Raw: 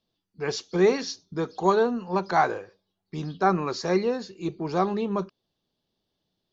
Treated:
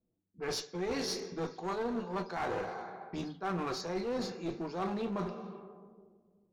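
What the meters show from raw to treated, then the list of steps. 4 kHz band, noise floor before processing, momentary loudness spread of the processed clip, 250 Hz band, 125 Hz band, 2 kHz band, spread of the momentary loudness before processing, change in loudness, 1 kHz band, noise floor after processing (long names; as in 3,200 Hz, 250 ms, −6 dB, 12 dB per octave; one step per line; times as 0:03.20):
−4.5 dB, −81 dBFS, 8 LU, −9.0 dB, −9.5 dB, −10.0 dB, 12 LU, −11.0 dB, −12.0 dB, −80 dBFS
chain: coupled-rooms reverb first 0.22 s, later 2.3 s, from −19 dB, DRR 4 dB
reversed playback
downward compressor 12 to 1, threshold −30 dBFS, peak gain reduction 16 dB
reversed playback
asymmetric clip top −36 dBFS
low-pass that shuts in the quiet parts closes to 430 Hz, open at −36 dBFS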